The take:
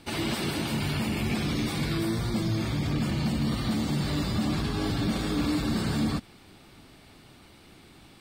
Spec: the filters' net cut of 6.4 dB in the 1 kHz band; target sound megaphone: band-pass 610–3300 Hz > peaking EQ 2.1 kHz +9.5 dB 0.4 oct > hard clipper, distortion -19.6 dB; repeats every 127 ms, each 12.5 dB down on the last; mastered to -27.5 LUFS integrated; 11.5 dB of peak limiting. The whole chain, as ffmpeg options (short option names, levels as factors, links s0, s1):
-af "equalizer=f=1000:t=o:g=-8,alimiter=level_in=1.88:limit=0.0631:level=0:latency=1,volume=0.531,highpass=610,lowpass=3300,equalizer=f=2100:t=o:w=0.4:g=9.5,aecho=1:1:127|254|381:0.237|0.0569|0.0137,asoftclip=type=hard:threshold=0.015,volume=5.96"